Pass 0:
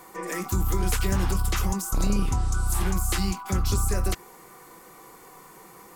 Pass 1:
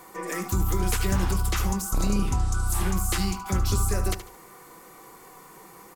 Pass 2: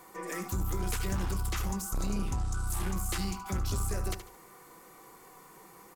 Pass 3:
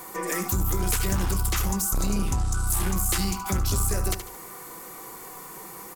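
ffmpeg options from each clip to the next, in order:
ffmpeg -i in.wav -af "aecho=1:1:74|148|222:0.237|0.0688|0.0199" out.wav
ffmpeg -i in.wav -af "asoftclip=type=tanh:threshold=-19dB,volume=-5.5dB" out.wav
ffmpeg -i in.wav -filter_complex "[0:a]highshelf=frequency=7400:gain=8.5,asplit=2[link_01][link_02];[link_02]acompressor=threshold=-39dB:ratio=6,volume=0.5dB[link_03];[link_01][link_03]amix=inputs=2:normalize=0,volume=4dB" out.wav

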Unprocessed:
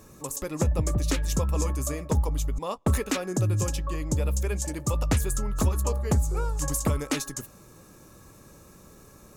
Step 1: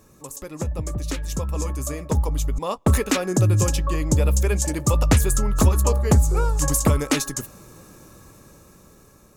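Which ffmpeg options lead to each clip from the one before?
ffmpeg -i in.wav -af "dynaudnorm=framelen=660:gausssize=7:maxgain=11dB,volume=-3dB" out.wav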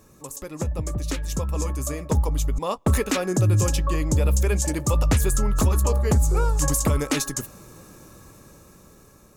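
ffmpeg -i in.wav -af "alimiter=limit=-12dB:level=0:latency=1:release=38" out.wav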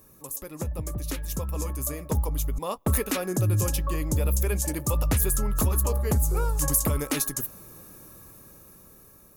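ffmpeg -i in.wav -af "aexciter=amount=3.7:drive=6.7:freq=10000,volume=-4.5dB" out.wav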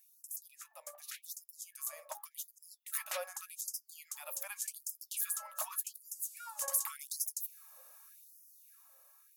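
ffmpeg -i in.wav -af "afftfilt=real='re*gte(b*sr/1024,480*pow(4900/480,0.5+0.5*sin(2*PI*0.86*pts/sr)))':imag='im*gte(b*sr/1024,480*pow(4900/480,0.5+0.5*sin(2*PI*0.86*pts/sr)))':win_size=1024:overlap=0.75,volume=-8.5dB" out.wav

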